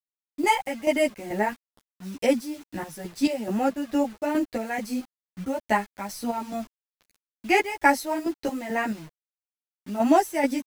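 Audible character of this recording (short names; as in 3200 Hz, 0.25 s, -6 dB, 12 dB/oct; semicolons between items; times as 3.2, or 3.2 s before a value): chopped level 2.3 Hz, depth 60%, duty 50%; a quantiser's noise floor 8-bit, dither none; a shimmering, thickened sound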